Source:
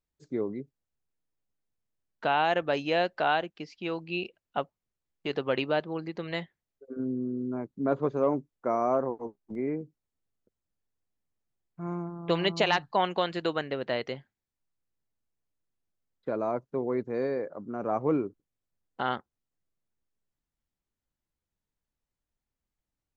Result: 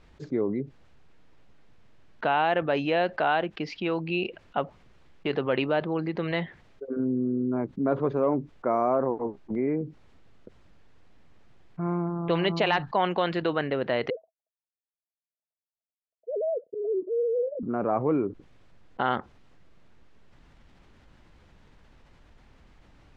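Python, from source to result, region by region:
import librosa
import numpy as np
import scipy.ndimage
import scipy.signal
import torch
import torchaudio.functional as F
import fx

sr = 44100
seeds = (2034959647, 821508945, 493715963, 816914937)

y = fx.chain(x, sr, fx.sine_speech(),
    fx.auto_swell(attack_ms=108.0),
    fx.cheby_ripple(hz=670.0, ripple_db=6), at=(14.1, 17.63))
y = scipy.signal.sosfilt(scipy.signal.butter(2, 3000.0, 'lowpass', fs=sr, output='sos'), y)
y = fx.env_flatten(y, sr, amount_pct=50)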